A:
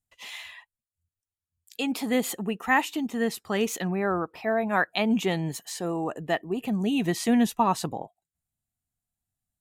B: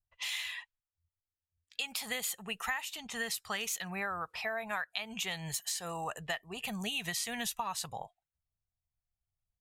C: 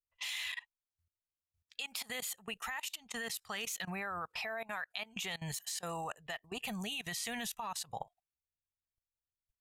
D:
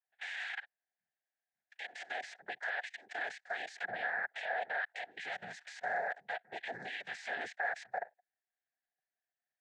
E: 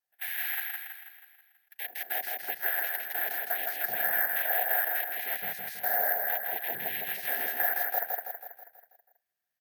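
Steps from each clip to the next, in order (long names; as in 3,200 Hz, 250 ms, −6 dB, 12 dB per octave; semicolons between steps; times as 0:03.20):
guitar amp tone stack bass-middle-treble 10-0-10; downward compressor 12 to 1, threshold −41 dBFS, peak gain reduction 17 dB; low-pass that shuts in the quiet parts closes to 690 Hz, open at −44.5 dBFS; level +8.5 dB
output level in coarse steps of 21 dB; level +2.5 dB
cochlear-implant simulation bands 6; brickwall limiter −35 dBFS, peak gain reduction 8 dB; pair of resonant band-passes 1,100 Hz, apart 1.2 octaves; level +15 dB
on a send: repeating echo 162 ms, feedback 52%, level −3 dB; on the sum: bad sample-rate conversion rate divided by 3×, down filtered, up zero stuff; level +2.5 dB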